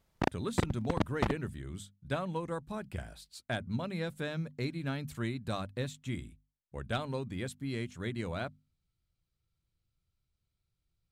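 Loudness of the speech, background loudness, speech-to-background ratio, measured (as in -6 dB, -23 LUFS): -38.0 LUFS, -35.5 LUFS, -2.5 dB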